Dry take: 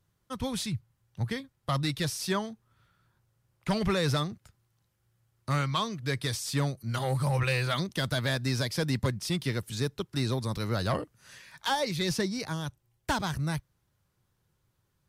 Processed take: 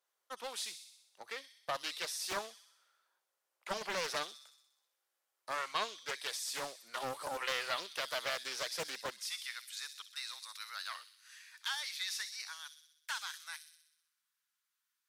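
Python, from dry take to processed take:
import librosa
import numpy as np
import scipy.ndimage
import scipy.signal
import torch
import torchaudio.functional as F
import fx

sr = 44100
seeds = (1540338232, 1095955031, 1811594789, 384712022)

y = fx.highpass(x, sr, hz=fx.steps((0.0, 500.0), (9.19, 1300.0)), slope=24)
y = fx.echo_wet_highpass(y, sr, ms=63, feedback_pct=62, hz=4000.0, wet_db=-5.5)
y = fx.doppler_dist(y, sr, depth_ms=0.44)
y = F.gain(torch.from_numpy(y), -5.0).numpy()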